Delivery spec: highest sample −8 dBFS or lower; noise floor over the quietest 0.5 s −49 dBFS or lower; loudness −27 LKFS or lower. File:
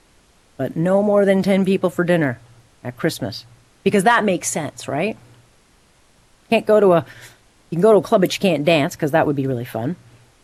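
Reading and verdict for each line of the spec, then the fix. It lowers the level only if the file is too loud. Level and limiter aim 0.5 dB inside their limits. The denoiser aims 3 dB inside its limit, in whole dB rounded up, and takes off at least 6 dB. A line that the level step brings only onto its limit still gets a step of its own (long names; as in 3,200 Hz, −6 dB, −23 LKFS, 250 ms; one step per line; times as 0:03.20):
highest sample −3.5 dBFS: out of spec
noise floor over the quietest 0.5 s −55 dBFS: in spec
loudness −18.0 LKFS: out of spec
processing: level −9.5 dB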